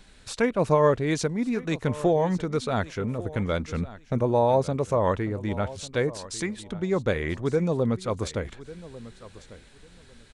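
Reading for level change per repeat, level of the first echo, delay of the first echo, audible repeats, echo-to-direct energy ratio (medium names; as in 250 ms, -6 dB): -14.5 dB, -17.5 dB, 1147 ms, 2, -17.5 dB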